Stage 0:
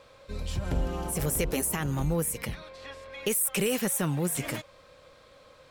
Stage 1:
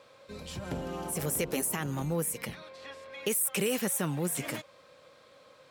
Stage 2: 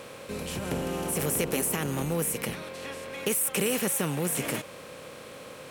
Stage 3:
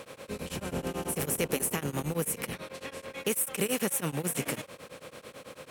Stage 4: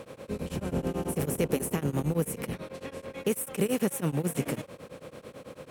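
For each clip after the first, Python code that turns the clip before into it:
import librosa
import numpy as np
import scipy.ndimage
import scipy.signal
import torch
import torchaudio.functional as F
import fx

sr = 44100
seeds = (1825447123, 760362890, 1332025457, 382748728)

y1 = scipy.signal.sosfilt(scipy.signal.butter(2, 140.0, 'highpass', fs=sr, output='sos'), x)
y1 = F.gain(torch.from_numpy(y1), -2.0).numpy()
y2 = fx.bin_compress(y1, sr, power=0.6)
y3 = y2 * np.abs(np.cos(np.pi * 9.1 * np.arange(len(y2)) / sr))
y4 = fx.tilt_shelf(y3, sr, db=5.5, hz=800.0)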